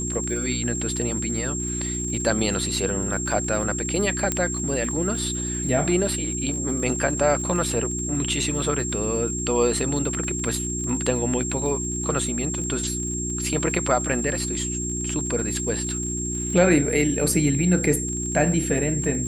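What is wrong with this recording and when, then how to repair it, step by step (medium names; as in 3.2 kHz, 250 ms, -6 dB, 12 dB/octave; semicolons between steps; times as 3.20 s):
crackle 47 per s -32 dBFS
hum 60 Hz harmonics 6 -30 dBFS
whine 7.5 kHz -28 dBFS
4.32 s: pop -8 dBFS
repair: de-click; de-hum 60 Hz, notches 6; band-stop 7.5 kHz, Q 30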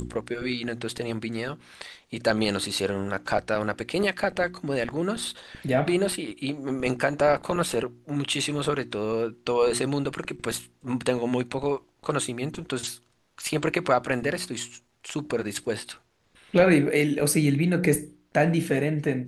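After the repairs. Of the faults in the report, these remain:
nothing left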